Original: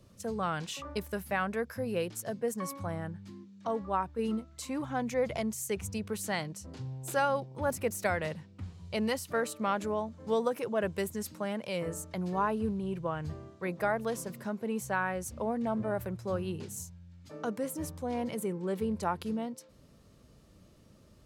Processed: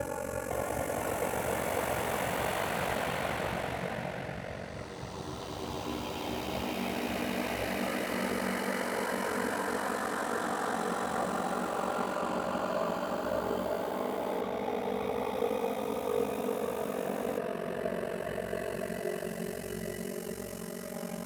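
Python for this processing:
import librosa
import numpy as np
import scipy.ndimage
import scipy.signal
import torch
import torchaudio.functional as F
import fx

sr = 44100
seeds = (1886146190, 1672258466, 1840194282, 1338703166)

y = fx.paulstretch(x, sr, seeds[0], factor=5.7, window_s=1.0, from_s=7.63)
y = y * np.sin(2.0 * np.pi * 23.0 * np.arange(len(y)) / sr)
y = fx.echo_pitch(y, sr, ms=507, semitones=4, count=3, db_per_echo=-3.0)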